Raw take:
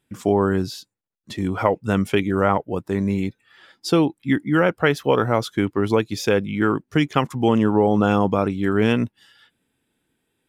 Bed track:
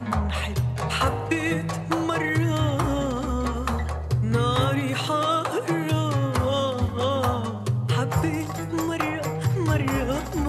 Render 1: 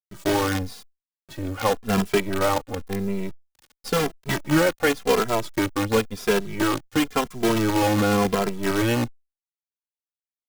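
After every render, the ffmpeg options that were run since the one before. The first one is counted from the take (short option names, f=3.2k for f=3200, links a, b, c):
-filter_complex "[0:a]acrusher=bits=4:dc=4:mix=0:aa=0.000001,asplit=2[a][b];[b]adelay=2.6,afreqshift=-0.94[c];[a][c]amix=inputs=2:normalize=1"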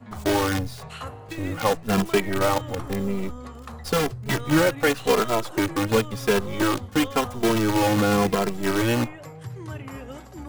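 -filter_complex "[1:a]volume=-13dB[a];[0:a][a]amix=inputs=2:normalize=0"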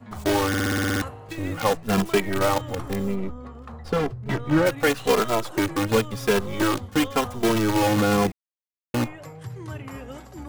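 -filter_complex "[0:a]asplit=3[a][b][c];[a]afade=t=out:st=3.14:d=0.02[d];[b]lowpass=f=1.4k:p=1,afade=t=in:st=3.14:d=0.02,afade=t=out:st=4.65:d=0.02[e];[c]afade=t=in:st=4.65:d=0.02[f];[d][e][f]amix=inputs=3:normalize=0,asplit=12[g][h][i][j][k][l][m][n][o][p][q][r];[g]atrim=end=0.542[s];[h]atrim=start=0.478:end=0.542[t];[i]atrim=start=0.478:end=0.542[u];[j]atrim=start=0.478:end=0.542[v];[k]atrim=start=0.478:end=0.542[w];[l]atrim=start=0.478:end=0.542[x];[m]atrim=start=0.478:end=0.542[y];[n]atrim=start=0.478:end=0.542[z];[o]atrim=start=0.478:end=0.542[aa];[p]atrim=start=1.018:end=8.32,asetpts=PTS-STARTPTS,afade=t=out:st=7.298:d=0.004:c=hsin[ab];[q]atrim=start=8.32:end=8.94,asetpts=PTS-STARTPTS,volume=0[ac];[r]atrim=start=8.94,asetpts=PTS-STARTPTS,afade=t=in:d=0.004:c=hsin[ad];[s][t]acrossfade=d=0.004:c1=hsin:c2=hsin[ae];[ae][u]acrossfade=d=0.004:c1=hsin:c2=hsin[af];[af][v]acrossfade=d=0.004:c1=hsin:c2=hsin[ag];[ag][w]acrossfade=d=0.004:c1=hsin:c2=hsin[ah];[ah][x]acrossfade=d=0.004:c1=hsin:c2=hsin[ai];[ai][y]acrossfade=d=0.004:c1=hsin:c2=hsin[aj];[aj][z]acrossfade=d=0.004:c1=hsin:c2=hsin[ak];[ak][aa]acrossfade=d=0.004:c1=hsin:c2=hsin[al];[ab][ac][ad]concat=n=3:v=0:a=1[am];[al][am]acrossfade=d=0.004:c1=hsin:c2=hsin"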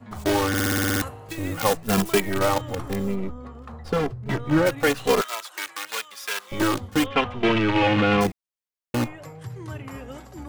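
-filter_complex "[0:a]asettb=1/sr,asplit=3[a][b][c];[a]atrim=end=0.554[d];[b]atrim=start=0.55:end=2.33,asetpts=PTS-STARTPTS,afade=t=in:d=0.004:c=qsin,afade=t=out:st=1.776:d=0.004:c=qsin,highshelf=f=6.7k:g=9[e];[c]atrim=start=2.326[f];[d][e]acrossfade=d=0.004:c1=hsin:c2=qsin[g];[g][f]acrossfade=d=0.004:c1=qsin:c2=hsin,asettb=1/sr,asplit=3[h][i][j];[h]atrim=end=5.214[k];[i]atrim=start=5.21:end=6.52,asetpts=PTS-STARTPTS,afade=t=in:d=0.004:c=qsin,afade=t=out:st=1.306:d=0.004:c=qsin,highpass=1.4k[l];[j]atrim=start=6.516[m];[k][l]acrossfade=d=0.004:c1=hsin:c2=qsin[n];[n][m]acrossfade=d=0.004:c1=qsin:c2=hsin,asettb=1/sr,asplit=3[o][p][q];[o]atrim=end=7.064[r];[p]atrim=start=7.06:end=8.21,asetpts=PTS-STARTPTS,afade=t=in:d=0.004:c=qsin,afade=t=out:st=1.146:d=0.004:c=qsin,lowpass=f=2.7k:t=q:w=2.5[s];[q]atrim=start=8.206[t];[r][s]acrossfade=d=0.004:c1=hsin:c2=qsin[u];[u][t]acrossfade=d=0.004:c1=qsin:c2=hsin"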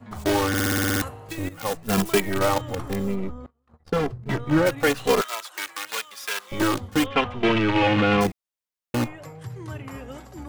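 -filter_complex "[0:a]asettb=1/sr,asplit=3[a][b][c];[a]atrim=end=3.464[d];[b]atrim=start=3.46:end=4.59,asetpts=PTS-STARTPTS,afade=t=in:d=0.004:c=qsin,afade=t=out:st=1.126:d=0.004:c=qsin,agate=range=-32dB:threshold=-36dB:ratio=16:release=100:detection=peak[e];[c]atrim=start=4.586[f];[d][e]acrossfade=d=0.004:c1=hsin:c2=qsin[g];[g][f]acrossfade=d=0.004:c1=qsin:c2=hsin,asettb=1/sr,asplit=3[h][i][j];[h]atrim=end=5.554[k];[i]atrim=start=5.55:end=6.3,asetpts=PTS-STARTPTS,afade=t=in:d=0.004:c=qsin,afade=t=out:st=0.746:d=0.004:c=qsin,acrusher=bits=3:mode=log:mix=0:aa=0.000001[l];[j]atrim=start=6.296[m];[k][l]acrossfade=d=0.004:c1=hsin:c2=qsin[n];[n][m]acrossfade=d=0.004:c1=qsin:c2=hsin,asplit=2[o][p];[o]atrim=end=1.49,asetpts=PTS-STARTPTS,afade=t=out:st=1.486:d=0.004:c=hsin:silence=0.188365[q];[p]atrim=start=1.49,asetpts=PTS-STARTPTS,afade=t=in:d=0.52:silence=0.188365[r];[q][r]concat=n=2:v=0:a=1"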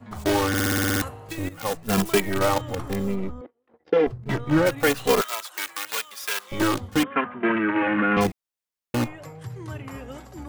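-filter_complex "[0:a]asettb=1/sr,asplit=3[a][b][c];[a]atrim=end=3.414[d];[b]atrim=start=3.41:end=4.07,asetpts=PTS-STARTPTS,afade=t=in:d=0.004:c=qsin,afade=t=out:st=0.656:d=0.004:c=qsin,highpass=320,equalizer=f=320:t=q:w=4:g=10,equalizer=f=480:t=q:w=4:g=7,equalizer=f=1.2k:t=q:w=4:g=-9,equalizer=f=2k:t=q:w=4:g=4,equalizer=f=4.3k:t=q:w=4:g=-9,lowpass=f=4.4k:w=0.5412,lowpass=f=4.4k:w=1.3066[e];[c]atrim=start=4.066[f];[d][e]acrossfade=d=0.004:c1=hsin:c2=qsin[g];[g][f]acrossfade=d=0.004:c1=qsin:c2=hsin,asettb=1/sr,asplit=3[h][i][j];[h]atrim=end=4.714[k];[i]atrim=start=4.71:end=6.44,asetpts=PTS-STARTPTS,afade=t=in:d=0.004:c=qsin,afade=t=out:st=1.726:d=0.004:c=qsin,highshelf=f=11k:g=7[l];[j]atrim=start=6.436[m];[k][l]acrossfade=d=0.004:c1=hsin:c2=qsin[n];[n][m]acrossfade=d=0.004:c1=qsin:c2=hsin,asettb=1/sr,asplit=3[o][p][q];[o]atrim=end=7.034[r];[p]atrim=start=7.03:end=8.17,asetpts=PTS-STARTPTS,afade=t=in:d=0.004:c=qsin,afade=t=out:st=1.136:d=0.004:c=qsin,highpass=f=180:w=0.5412,highpass=f=180:w=1.3066,equalizer=f=480:t=q:w=4:g=-8,equalizer=f=780:t=q:w=4:g=-7,equalizer=f=1.6k:t=q:w=4:g=6,lowpass=f=2.1k:w=0.5412,lowpass=f=2.1k:w=1.3066[s];[q]atrim=start=8.166[t];[r][s]acrossfade=d=0.004:c1=hsin:c2=qsin[u];[u][t]acrossfade=d=0.004:c1=qsin:c2=hsin"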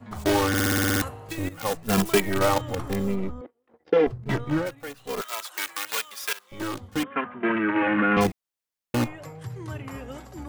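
-filter_complex "[0:a]asplit=4[a][b][c][d];[a]atrim=end=4.86,asetpts=PTS-STARTPTS,afade=t=out:st=4.42:d=0.44:c=qua:silence=0.141254[e];[b]atrim=start=4.86:end=4.97,asetpts=PTS-STARTPTS,volume=-17dB[f];[c]atrim=start=4.97:end=6.33,asetpts=PTS-STARTPTS,afade=t=in:d=0.44:c=qua:silence=0.141254,afade=t=out:st=1.356:d=0.004:c=hsin:silence=0.177828[g];[d]atrim=start=6.33,asetpts=PTS-STARTPTS,afade=t=in:d=1.54:silence=0.177828[h];[e][f][g][h]concat=n=4:v=0:a=1"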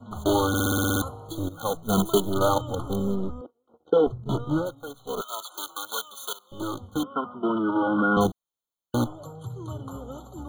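-af "afftfilt=real='re*eq(mod(floor(b*sr/1024/1500),2),0)':imag='im*eq(mod(floor(b*sr/1024/1500),2),0)':win_size=1024:overlap=0.75"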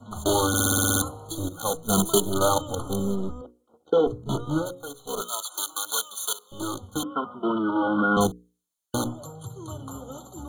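-af "equalizer=f=8.8k:w=0.61:g=10.5,bandreject=f=60:t=h:w=6,bandreject=f=120:t=h:w=6,bandreject=f=180:t=h:w=6,bandreject=f=240:t=h:w=6,bandreject=f=300:t=h:w=6,bandreject=f=360:t=h:w=6,bandreject=f=420:t=h:w=6,bandreject=f=480:t=h:w=6,bandreject=f=540:t=h:w=6"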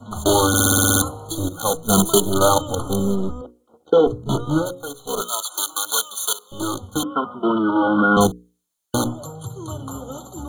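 -af "volume=6dB,alimiter=limit=-1dB:level=0:latency=1"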